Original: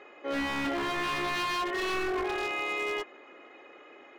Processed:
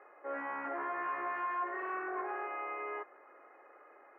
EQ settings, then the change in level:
high-pass filter 580 Hz 12 dB per octave
inverse Chebyshev low-pass filter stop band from 3,400 Hz, stop band 40 dB
−2.5 dB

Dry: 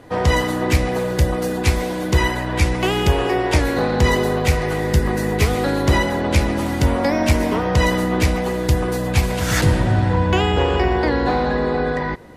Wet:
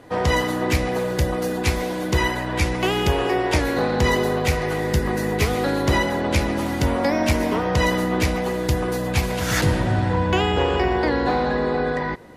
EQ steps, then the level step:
dynamic equaliser 8,200 Hz, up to −4 dB, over −49 dBFS, Q 5.3
low-shelf EQ 100 Hz −6 dB
−1.5 dB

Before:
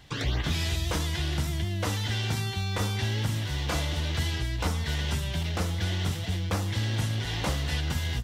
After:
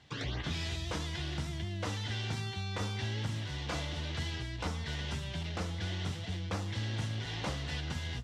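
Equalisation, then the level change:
high-pass filter 76 Hz
low-pass filter 6,800 Hz 12 dB per octave
−6.5 dB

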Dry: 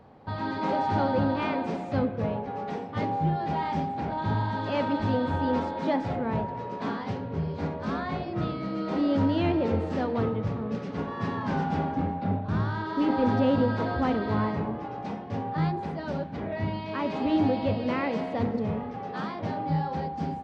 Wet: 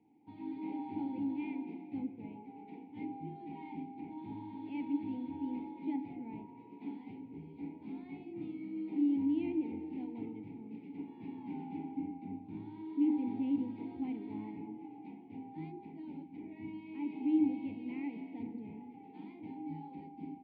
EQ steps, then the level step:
formant filter u
phaser with its sweep stopped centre 2,800 Hz, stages 4
−1.5 dB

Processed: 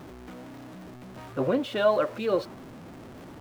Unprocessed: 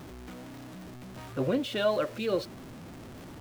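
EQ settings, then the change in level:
low-shelf EQ 170 Hz −7 dB
high-shelf EQ 2,200 Hz −7.5 dB
dynamic equaliser 1,000 Hz, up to +5 dB, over −46 dBFS, Q 1.2
+3.5 dB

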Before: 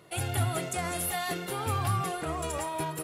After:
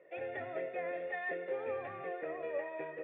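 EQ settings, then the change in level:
formant resonators in series e
high-pass filter 290 Hz 12 dB per octave
high-frequency loss of the air 56 metres
+7.5 dB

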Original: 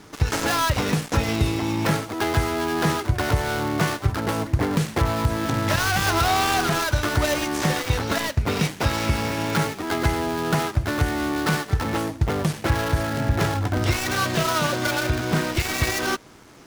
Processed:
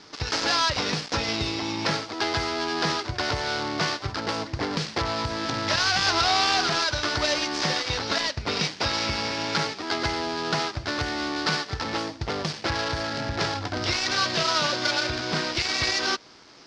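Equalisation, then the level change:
transistor ladder low-pass 5,500 Hz, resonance 60%
low-shelf EQ 220 Hz −11 dB
+8.5 dB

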